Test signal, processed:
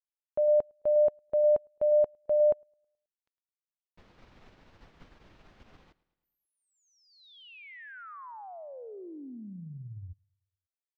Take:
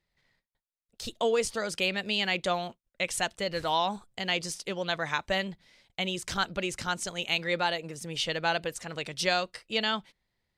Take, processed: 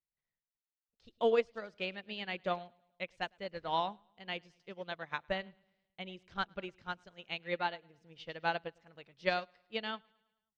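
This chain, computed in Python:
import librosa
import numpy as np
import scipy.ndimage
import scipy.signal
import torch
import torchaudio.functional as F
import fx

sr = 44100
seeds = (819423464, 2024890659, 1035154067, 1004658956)

p1 = fx.air_absorb(x, sr, metres=220.0)
p2 = p1 + fx.echo_feedback(p1, sr, ms=107, feedback_pct=53, wet_db=-16.0, dry=0)
y = fx.upward_expand(p2, sr, threshold_db=-39.0, expansion=2.5)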